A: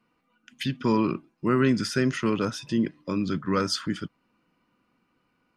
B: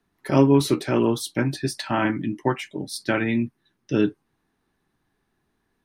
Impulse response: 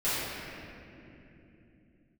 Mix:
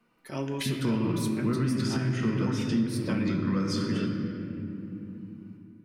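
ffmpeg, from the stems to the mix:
-filter_complex "[0:a]acrossover=split=210[a][b];[b]acompressor=threshold=-34dB:ratio=5[c];[a][c]amix=inputs=2:normalize=0,volume=-1dB,asplit=2[d][e];[e]volume=-10dB[f];[1:a]highshelf=f=2.8k:g=10.5,volume=-17dB,asplit=2[g][h];[h]volume=-17dB[i];[2:a]atrim=start_sample=2205[j];[f][i]amix=inputs=2:normalize=0[k];[k][j]afir=irnorm=-1:irlink=0[l];[d][g][l]amix=inputs=3:normalize=0,alimiter=limit=-18dB:level=0:latency=1:release=231"

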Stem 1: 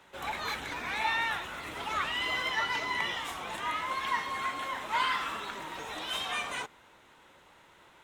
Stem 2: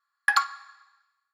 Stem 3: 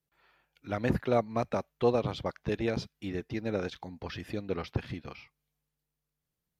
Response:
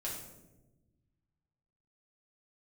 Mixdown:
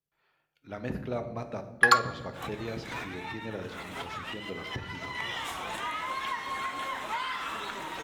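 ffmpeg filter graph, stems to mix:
-filter_complex "[0:a]acompressor=threshold=-33dB:ratio=6,adelay=2200,volume=2dB,asplit=2[a][b];[b]volume=-17dB[c];[1:a]adelay=1550,volume=2dB[d];[2:a]volume=-9.5dB,asplit=3[e][f][g];[f]volume=-3.5dB[h];[g]apad=whole_len=451346[i];[a][i]sidechaincompress=threshold=-52dB:ratio=8:attack=6.6:release=147[j];[3:a]atrim=start_sample=2205[k];[c][h]amix=inputs=2:normalize=0[l];[l][k]afir=irnorm=-1:irlink=0[m];[j][d][e][m]amix=inputs=4:normalize=0"

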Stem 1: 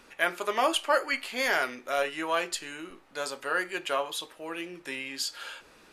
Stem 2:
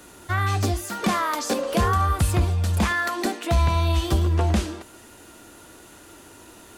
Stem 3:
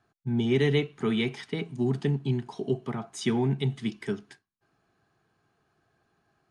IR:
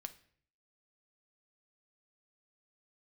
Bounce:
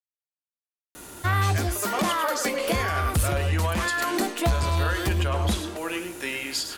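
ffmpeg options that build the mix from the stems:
-filter_complex "[0:a]dynaudnorm=f=350:g=5:m=10dB,adelay=1350,volume=-4dB,asplit=2[a][b];[b]volume=-9dB[c];[1:a]highshelf=f=11k:g=9.5,asoftclip=type=tanh:threshold=-16.5dB,adelay=950,volume=3dB[d];[c]aecho=0:1:104:1[e];[a][d][e]amix=inputs=3:normalize=0,alimiter=limit=-15.5dB:level=0:latency=1:release=289"

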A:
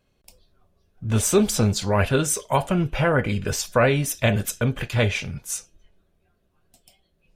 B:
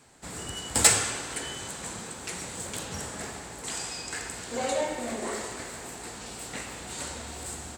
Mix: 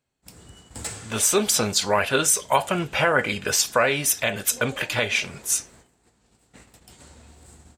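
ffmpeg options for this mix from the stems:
-filter_complex "[0:a]highpass=f=860:p=1,dynaudnorm=f=230:g=13:m=5.5dB,volume=3dB[a];[1:a]lowshelf=f=270:g=10.5,volume=-14.5dB[b];[a][b]amix=inputs=2:normalize=0,agate=range=-13dB:threshold=-49dB:ratio=16:detection=peak,alimiter=limit=-7dB:level=0:latency=1:release=232"

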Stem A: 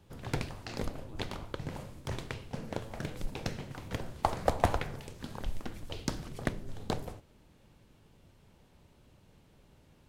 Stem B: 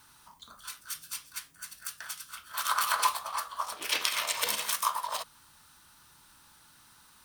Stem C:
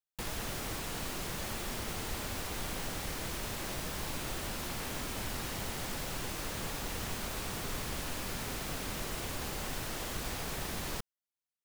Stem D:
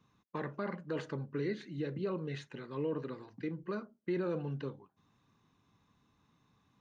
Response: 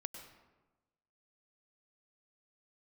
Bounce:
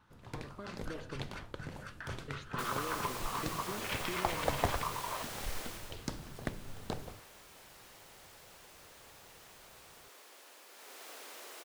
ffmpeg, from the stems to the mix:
-filter_complex "[0:a]volume=-11.5dB[a];[1:a]lowpass=2.1k,acompressor=threshold=-35dB:ratio=6,volume=-6.5dB[b];[2:a]highpass=f=380:w=0.5412,highpass=f=380:w=1.3066,adelay=2400,volume=-2dB,afade=t=out:st=5.57:d=0.4:silence=0.223872,afade=t=in:st=10.7:d=0.37:silence=0.446684[c];[3:a]acompressor=threshold=-41dB:ratio=6,volume=-5dB,asplit=3[d][e][f];[d]atrim=end=1.34,asetpts=PTS-STARTPTS,afade=t=out:st=1.336:d=0.004:c=hsin[g];[e]atrim=start=1.34:end=2.28,asetpts=PTS-STARTPTS,volume=0[h];[f]atrim=start=2.28,asetpts=PTS-STARTPTS,afade=t=in:d=0.004:c=hsin[i];[g][h][i]concat=n=3:v=0:a=1[j];[a][b][c][j]amix=inputs=4:normalize=0,dynaudnorm=f=290:g=5:m=6dB"

